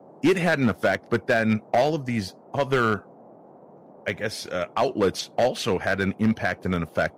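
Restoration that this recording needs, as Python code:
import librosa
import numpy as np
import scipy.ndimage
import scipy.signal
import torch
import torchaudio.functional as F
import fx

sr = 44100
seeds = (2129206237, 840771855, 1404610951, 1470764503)

y = fx.fix_declip(x, sr, threshold_db=-14.0)
y = fx.noise_reduce(y, sr, print_start_s=3.38, print_end_s=3.88, reduce_db=19.0)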